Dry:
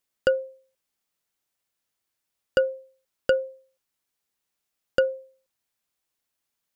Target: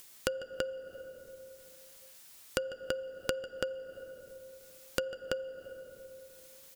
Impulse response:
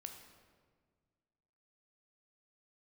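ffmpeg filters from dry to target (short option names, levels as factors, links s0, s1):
-filter_complex "[0:a]aecho=1:1:147|333:0.211|0.596,asplit=2[s0][s1];[1:a]atrim=start_sample=2205,adelay=12[s2];[s1][s2]afir=irnorm=-1:irlink=0,volume=0.596[s3];[s0][s3]amix=inputs=2:normalize=0,acompressor=threshold=0.01:ratio=4,highshelf=f=2800:g=8,acompressor=mode=upward:threshold=0.00447:ratio=2.5,volume=1.78"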